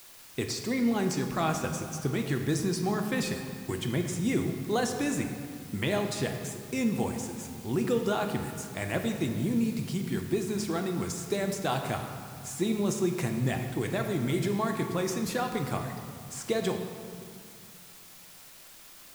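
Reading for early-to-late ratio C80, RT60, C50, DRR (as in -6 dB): 7.0 dB, 2.2 s, 6.0 dB, 4.0 dB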